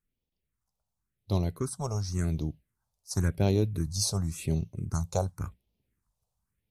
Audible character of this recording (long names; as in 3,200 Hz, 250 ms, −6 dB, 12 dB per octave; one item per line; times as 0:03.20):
phaser sweep stages 4, 0.92 Hz, lowest notch 300–1,500 Hz